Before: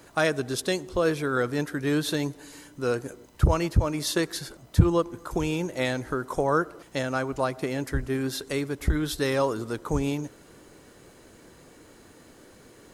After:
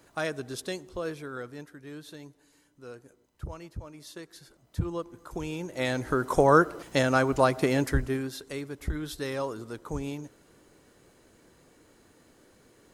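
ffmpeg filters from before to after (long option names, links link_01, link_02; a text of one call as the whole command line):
ffmpeg -i in.wav -af "volume=15dB,afade=type=out:start_time=0.63:duration=1.17:silence=0.298538,afade=type=in:start_time=4.27:duration=1.4:silence=0.266073,afade=type=in:start_time=5.67:duration=0.69:silence=0.281838,afade=type=out:start_time=7.79:duration=0.51:silence=0.251189" out.wav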